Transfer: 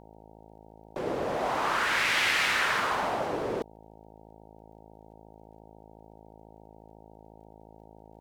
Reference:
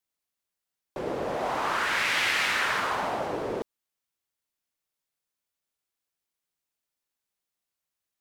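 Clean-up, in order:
click removal
hum removal 54.1 Hz, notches 17

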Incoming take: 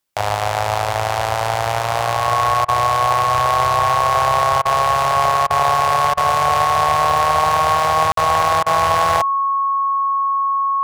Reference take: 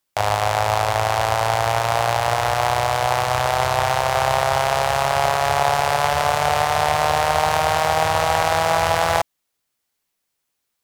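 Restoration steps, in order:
clipped peaks rebuilt −5 dBFS
notch filter 1,100 Hz, Q 30
repair the gap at 0:08.12, 53 ms
repair the gap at 0:02.65/0:04.62/0:05.47/0:06.14/0:08.63, 32 ms

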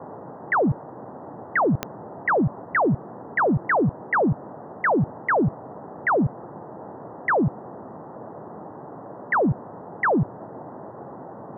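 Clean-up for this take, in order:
click removal
noise reduction from a noise print 29 dB

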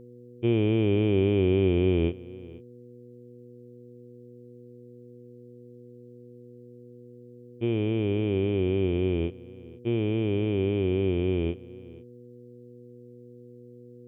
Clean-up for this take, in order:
hum removal 121.7 Hz, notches 4
echo removal 486 ms −20.5 dB

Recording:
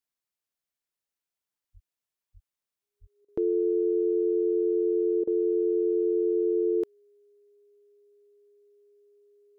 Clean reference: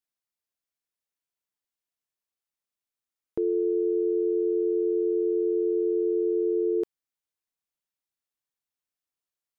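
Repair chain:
notch filter 410 Hz, Q 30
0:01.73–0:01.85: high-pass filter 140 Hz 24 dB per octave
0:02.33–0:02.45: high-pass filter 140 Hz 24 dB per octave
0:03.00–0:03.12: high-pass filter 140 Hz 24 dB per octave
repair the gap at 0:03.25/0:05.24, 32 ms

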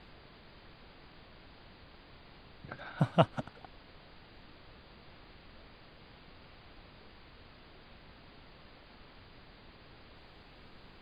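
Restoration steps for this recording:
noise reduction from a noise print 30 dB

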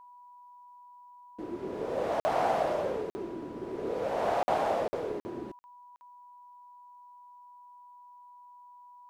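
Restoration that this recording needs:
notch filter 980 Hz, Q 30
repair the gap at 0:02.20/0:03.10/0:04.43/0:04.88/0:05.20/0:05.59/0:05.96, 50 ms

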